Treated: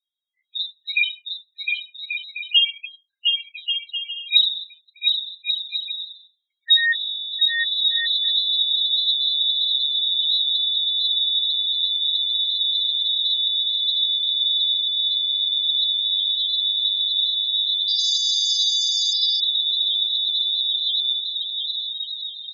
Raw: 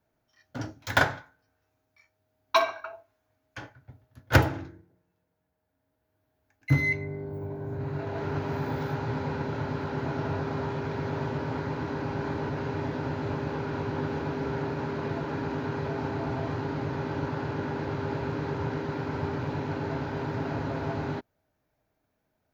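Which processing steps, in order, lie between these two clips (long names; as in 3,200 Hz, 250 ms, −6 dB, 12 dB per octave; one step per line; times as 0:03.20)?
gain on one half-wave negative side −3 dB
voice inversion scrambler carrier 3,900 Hz
leveller curve on the samples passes 3
bouncing-ball delay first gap 710 ms, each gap 0.6×, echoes 5
spectral peaks only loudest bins 8
Butterworth high-pass 1,800 Hz 48 dB per octave
gate on every frequency bin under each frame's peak −10 dB strong
0:17.77–0:19.80: delay with pitch and tempo change per echo 111 ms, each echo +5 semitones, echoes 2, each echo −6 dB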